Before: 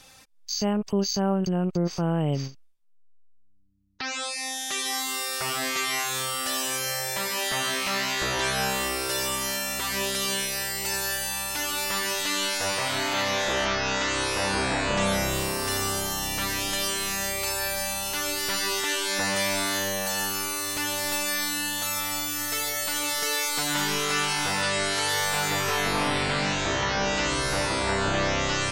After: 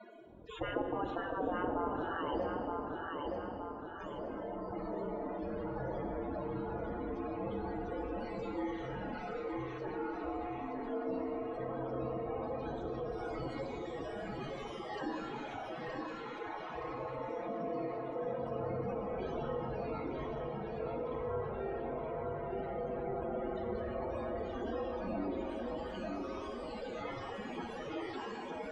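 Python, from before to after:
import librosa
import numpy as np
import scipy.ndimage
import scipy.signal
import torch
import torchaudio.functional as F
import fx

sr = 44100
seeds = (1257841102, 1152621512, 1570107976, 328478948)

y = fx.spec_gate(x, sr, threshold_db=-25, keep='weak')
y = fx.tilt_eq(y, sr, slope=-4.0)
y = fx.spec_topn(y, sr, count=32)
y = fx.bandpass_q(y, sr, hz=470.0, q=1.2)
y = fx.echo_feedback(y, sr, ms=920, feedback_pct=34, wet_db=-6.5)
y = fx.rev_gated(y, sr, seeds[0], gate_ms=480, shape='falling', drr_db=5.5)
y = fx.env_flatten(y, sr, amount_pct=50)
y = F.gain(torch.from_numpy(y), 14.0).numpy()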